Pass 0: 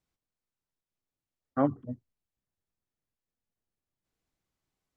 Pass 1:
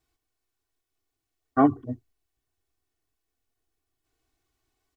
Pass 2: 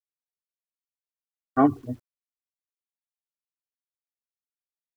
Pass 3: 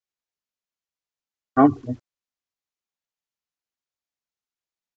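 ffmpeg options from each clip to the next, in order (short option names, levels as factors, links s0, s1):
-af "aecho=1:1:2.7:0.92,volume=1.78"
-af "acrusher=bits=9:mix=0:aa=0.000001"
-af "aresample=16000,aresample=44100,volume=1.58"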